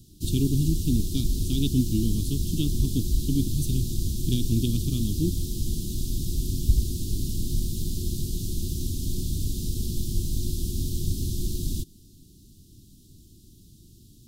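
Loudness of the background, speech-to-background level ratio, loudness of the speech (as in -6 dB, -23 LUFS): -30.0 LUFS, 1.5 dB, -28.5 LUFS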